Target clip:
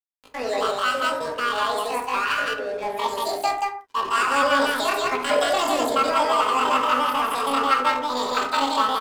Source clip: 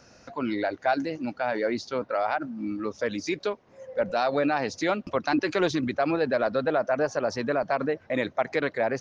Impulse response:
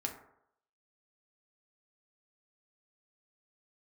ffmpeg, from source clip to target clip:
-filter_complex "[0:a]aecho=1:1:69.97|172:0.355|0.891,asetrate=85689,aresample=44100,atempo=0.514651,aeval=exprs='sgn(val(0))*max(abs(val(0))-0.0133,0)':c=same[a];[1:a]atrim=start_sample=2205,afade=t=out:st=0.22:d=0.01,atrim=end_sample=10143[b];[a][b]afir=irnorm=-1:irlink=0,volume=2.5dB"

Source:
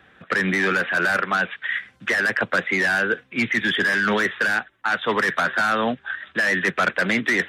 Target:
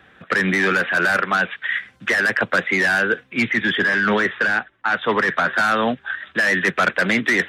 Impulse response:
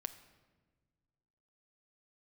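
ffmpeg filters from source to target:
-filter_complex "[0:a]asettb=1/sr,asplit=3[a][b][c];[a]atrim=end=3.504[d];[b]atrim=start=3.5:end=5.53,asetpts=PTS-STARTPTS,afade=t=in:d=0.004:c=qsin,afade=t=out:st=2.026:d=0.004:c=qsin,aemphasis=mode=reproduction:type=50fm[e];[c]atrim=start=5.526[f];[d][e]acrossfade=d=0.004:c1=hsin:c2=qsin[g];[g][f]acrossfade=d=0.004:c1=qsin:c2=hsin,volume=2.5dB"

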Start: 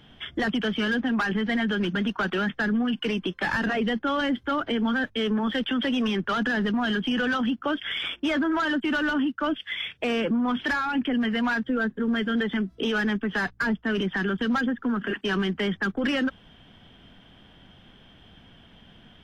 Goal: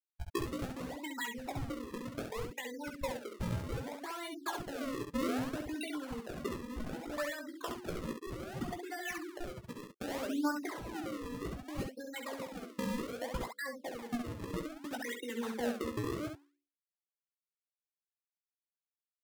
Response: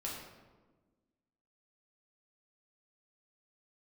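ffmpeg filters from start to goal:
-af "afftfilt=real='re*gte(hypot(re,im),0.112)':imag='im*gte(hypot(re,im),0.112)':win_size=1024:overlap=0.75,highpass=300,bandreject=f=60:t=h:w=6,bandreject=f=120:t=h:w=6,bandreject=f=180:t=h:w=6,bandreject=f=240:t=h:w=6,bandreject=f=300:t=h:w=6,bandreject=f=360:t=h:w=6,bandreject=f=420:t=h:w=6,bandreject=f=480:t=h:w=6,acompressor=threshold=-40dB:ratio=20,aphaser=in_gain=1:out_gain=1:delay=2.6:decay=0.61:speed=0.19:type=triangular,acrusher=samples=40:mix=1:aa=0.000001:lfo=1:lforange=64:lforate=0.64,asetrate=52444,aresample=44100,atempo=0.840896,aecho=1:1:17|67:0.447|0.531,adynamicequalizer=threshold=0.00224:dfrequency=1900:dqfactor=0.7:tfrequency=1900:tqfactor=0.7:attack=5:release=100:ratio=0.375:range=2:mode=cutabove:tftype=highshelf,volume=1.5dB"

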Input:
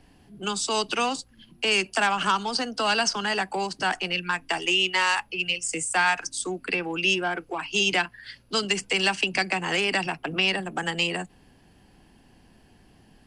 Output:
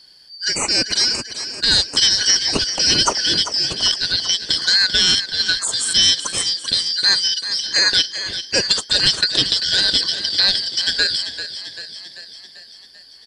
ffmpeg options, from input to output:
-filter_complex "[0:a]afftfilt=real='real(if(lt(b,272),68*(eq(floor(b/68),0)*3+eq(floor(b/68),1)*2+eq(floor(b/68),2)*1+eq(floor(b/68),3)*0)+mod(b,68),b),0)':imag='imag(if(lt(b,272),68*(eq(floor(b/68),0)*3+eq(floor(b/68),1)*2+eq(floor(b/68),2)*1+eq(floor(b/68),3)*0)+mod(b,68),b),0)':win_size=2048:overlap=0.75,asplit=8[a][b][c][d][e][f][g][h];[b]adelay=391,afreqshift=33,volume=-11dB[i];[c]adelay=782,afreqshift=66,volume=-15.6dB[j];[d]adelay=1173,afreqshift=99,volume=-20.2dB[k];[e]adelay=1564,afreqshift=132,volume=-24.7dB[l];[f]adelay=1955,afreqshift=165,volume=-29.3dB[m];[g]adelay=2346,afreqshift=198,volume=-33.9dB[n];[h]adelay=2737,afreqshift=231,volume=-38.5dB[o];[a][i][j][k][l][m][n][o]amix=inputs=8:normalize=0,volume=7.5dB"

